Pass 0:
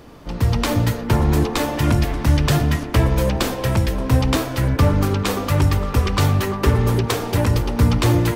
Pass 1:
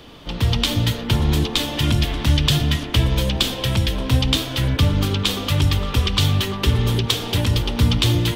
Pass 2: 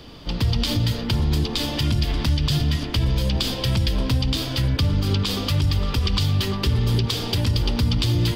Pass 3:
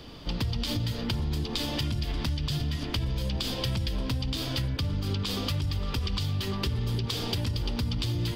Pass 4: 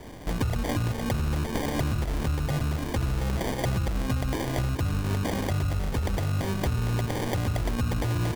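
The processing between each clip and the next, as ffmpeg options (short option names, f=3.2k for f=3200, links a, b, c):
-filter_complex "[0:a]equalizer=f=3.3k:t=o:w=0.79:g=14.5,acrossover=split=280|3000[a][b][c];[b]acompressor=threshold=-26dB:ratio=6[d];[a][d][c]amix=inputs=3:normalize=0,volume=-1dB"
-af "lowshelf=f=260:g=6,alimiter=limit=-10.5dB:level=0:latency=1:release=80,equalizer=f=4.8k:w=5.7:g=11.5,volume=-2.5dB"
-af "acompressor=threshold=-23dB:ratio=6,volume=-3dB"
-af "acrusher=samples=33:mix=1:aa=0.000001,volume=2.5dB"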